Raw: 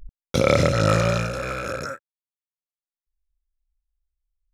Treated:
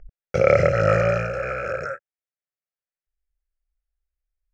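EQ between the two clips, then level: air absorption 170 m; low shelf 110 Hz -8.5 dB; fixed phaser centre 1000 Hz, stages 6; +4.5 dB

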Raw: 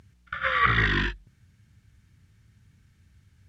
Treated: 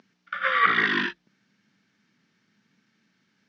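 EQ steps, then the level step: elliptic band-pass 210–5600 Hz, stop band 40 dB; +2.0 dB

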